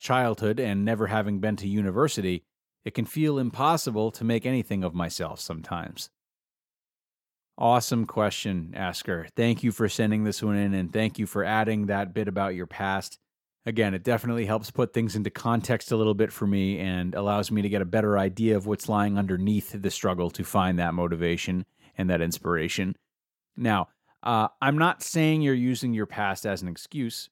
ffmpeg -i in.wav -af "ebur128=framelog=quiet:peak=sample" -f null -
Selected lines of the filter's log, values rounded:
Integrated loudness:
  I:         -26.6 LUFS
  Threshold: -36.8 LUFS
Loudness range:
  LRA:         3.3 LU
  Threshold: -47.1 LUFS
  LRA low:   -29.0 LUFS
  LRA high:  -25.7 LUFS
Sample peak:
  Peak:       -6.2 dBFS